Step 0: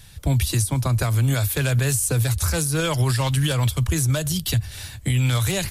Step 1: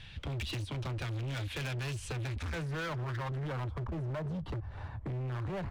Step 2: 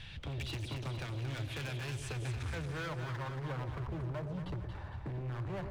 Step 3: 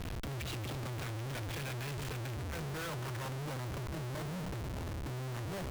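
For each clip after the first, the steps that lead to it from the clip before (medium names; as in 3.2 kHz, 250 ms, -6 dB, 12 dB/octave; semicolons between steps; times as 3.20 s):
low-pass sweep 2.9 kHz -> 990 Hz, 2.05–3.70 s; compression 3:1, threshold -26 dBFS, peak gain reduction 7.5 dB; hard clipper -31 dBFS, distortion -8 dB; trim -3.5 dB
peak limiter -39.5 dBFS, peak gain reduction 5 dB; on a send: two-band feedback delay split 760 Hz, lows 115 ms, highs 229 ms, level -6.5 dB; on the sum: trim +1.5 dB
Schmitt trigger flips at -47 dBFS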